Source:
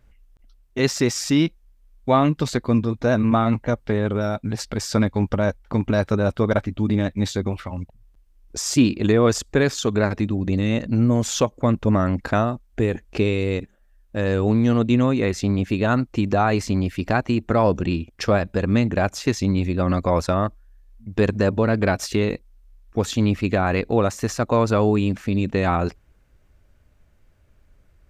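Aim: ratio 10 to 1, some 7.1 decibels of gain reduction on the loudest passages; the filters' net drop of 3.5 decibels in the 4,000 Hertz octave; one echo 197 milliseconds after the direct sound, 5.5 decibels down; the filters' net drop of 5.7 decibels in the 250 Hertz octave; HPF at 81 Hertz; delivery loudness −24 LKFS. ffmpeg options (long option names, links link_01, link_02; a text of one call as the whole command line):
ffmpeg -i in.wav -af "highpass=81,equalizer=frequency=250:width_type=o:gain=-7,equalizer=frequency=4000:width_type=o:gain=-4.5,acompressor=threshold=-22dB:ratio=10,aecho=1:1:197:0.531,volume=3.5dB" out.wav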